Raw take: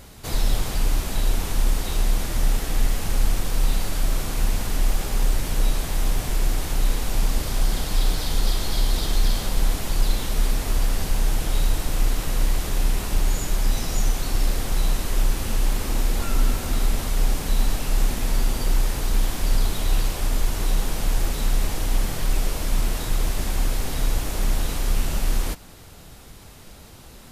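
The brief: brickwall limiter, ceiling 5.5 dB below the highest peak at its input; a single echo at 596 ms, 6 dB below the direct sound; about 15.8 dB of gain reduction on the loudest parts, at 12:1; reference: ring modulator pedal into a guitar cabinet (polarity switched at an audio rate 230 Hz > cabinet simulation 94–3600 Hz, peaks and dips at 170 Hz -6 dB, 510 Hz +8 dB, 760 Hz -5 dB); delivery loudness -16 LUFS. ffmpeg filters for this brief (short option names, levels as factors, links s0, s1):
-af "acompressor=threshold=0.0316:ratio=12,alimiter=level_in=1.5:limit=0.0631:level=0:latency=1,volume=0.668,aecho=1:1:596:0.501,aeval=exprs='val(0)*sgn(sin(2*PI*230*n/s))':c=same,highpass=94,equalizer=f=170:t=q:w=4:g=-6,equalizer=f=510:t=q:w=4:g=8,equalizer=f=760:t=q:w=4:g=-5,lowpass=f=3600:w=0.5412,lowpass=f=3600:w=1.3066,volume=8.91"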